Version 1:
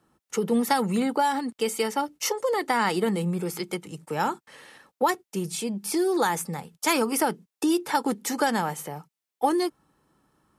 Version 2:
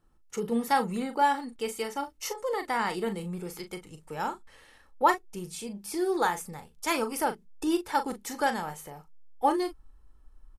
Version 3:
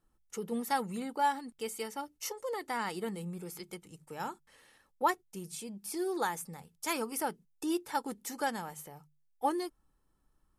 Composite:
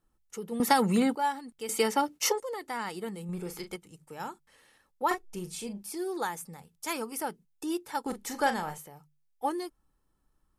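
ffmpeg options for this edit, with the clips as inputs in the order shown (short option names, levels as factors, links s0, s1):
-filter_complex "[0:a]asplit=2[s0][s1];[1:a]asplit=3[s2][s3][s4];[2:a]asplit=6[s5][s6][s7][s8][s9][s10];[s5]atrim=end=0.602[s11];[s0]atrim=start=0.598:end=1.152[s12];[s6]atrim=start=1.148:end=1.692[s13];[s1]atrim=start=1.688:end=2.402[s14];[s7]atrim=start=2.398:end=3.292[s15];[s2]atrim=start=3.288:end=3.762[s16];[s8]atrim=start=3.758:end=5.112[s17];[s3]atrim=start=5.108:end=5.832[s18];[s9]atrim=start=5.828:end=8.062[s19];[s4]atrim=start=8.058:end=8.782[s20];[s10]atrim=start=8.778[s21];[s11][s12]acrossfade=d=0.004:c1=hsin:c2=hsin[s22];[s22][s13]acrossfade=d=0.004:c1=hsin:c2=hsin[s23];[s23][s14]acrossfade=d=0.004:c1=hsin:c2=hsin[s24];[s24][s15]acrossfade=d=0.004:c1=hsin:c2=hsin[s25];[s25][s16]acrossfade=d=0.004:c1=hsin:c2=hsin[s26];[s26][s17]acrossfade=d=0.004:c1=hsin:c2=hsin[s27];[s27][s18]acrossfade=d=0.004:c1=hsin:c2=hsin[s28];[s28][s19]acrossfade=d=0.004:c1=hsin:c2=hsin[s29];[s29][s20]acrossfade=d=0.004:c1=hsin:c2=hsin[s30];[s30][s21]acrossfade=d=0.004:c1=hsin:c2=hsin"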